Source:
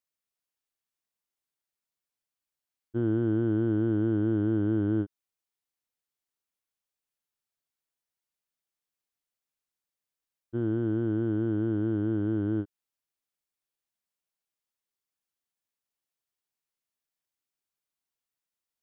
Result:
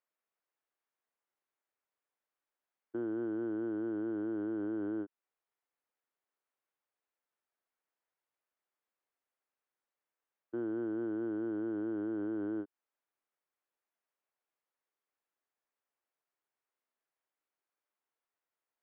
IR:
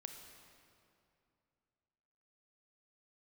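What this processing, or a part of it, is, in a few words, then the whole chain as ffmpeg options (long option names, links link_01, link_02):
DJ mixer with the lows and highs turned down: -filter_complex "[0:a]acrossover=split=280 2200:gain=0.0794 1 0.112[link_01][link_02][link_03];[link_01][link_02][link_03]amix=inputs=3:normalize=0,alimiter=level_in=10.5dB:limit=-24dB:level=0:latency=1:release=259,volume=-10.5dB,volume=5dB"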